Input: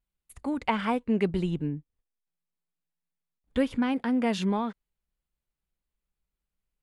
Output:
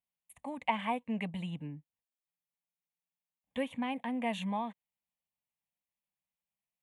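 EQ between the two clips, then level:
high-pass filter 190 Hz 12 dB per octave
phaser with its sweep stopped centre 1,400 Hz, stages 6
−2.5 dB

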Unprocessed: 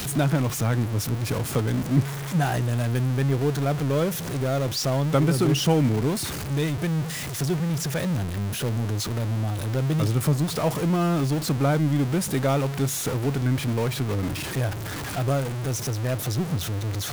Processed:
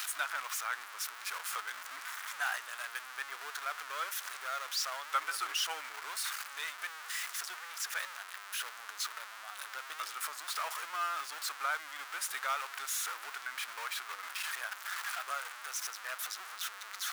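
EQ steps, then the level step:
four-pole ladder high-pass 1,100 Hz, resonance 45%
+2.5 dB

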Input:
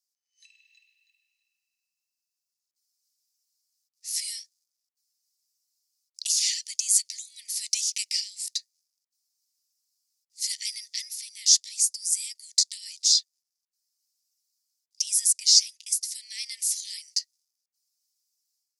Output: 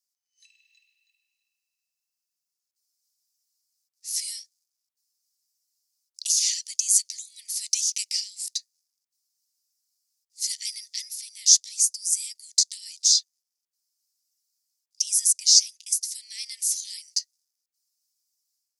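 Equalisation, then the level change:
high-shelf EQ 2,900 Hz +7.5 dB
dynamic equaliser 6,200 Hz, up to +5 dB, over −32 dBFS, Q 6.4
−6.0 dB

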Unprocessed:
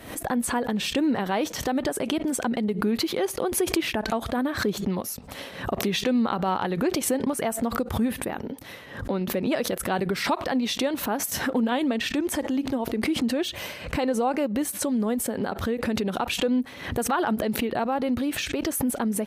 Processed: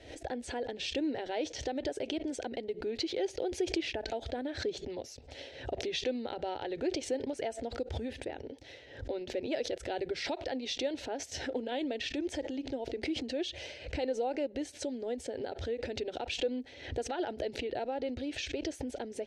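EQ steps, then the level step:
low-pass filter 6,200 Hz 24 dB per octave
parametric band 73 Hz +4.5 dB 0.34 octaves
phaser with its sweep stopped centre 470 Hz, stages 4
−6.0 dB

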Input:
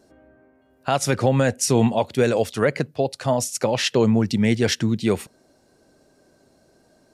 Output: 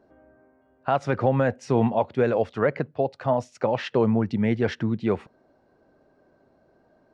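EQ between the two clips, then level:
head-to-tape spacing loss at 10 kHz 32 dB
parametric band 1,100 Hz +7 dB 2.2 octaves
−4.0 dB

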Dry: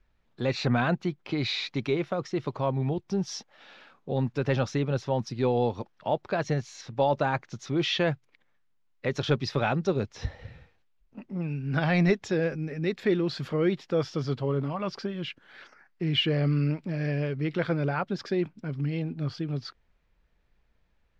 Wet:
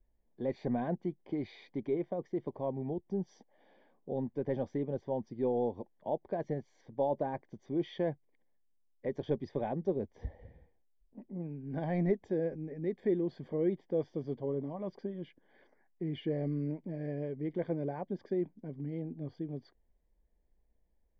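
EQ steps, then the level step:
moving average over 33 samples
parametric band 120 Hz −12 dB 0.94 octaves
−3.0 dB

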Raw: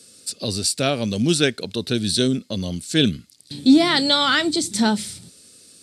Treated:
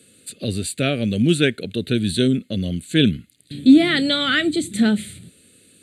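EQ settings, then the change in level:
high-shelf EQ 4,800 Hz −5 dB
phaser with its sweep stopped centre 2,300 Hz, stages 4
+3.5 dB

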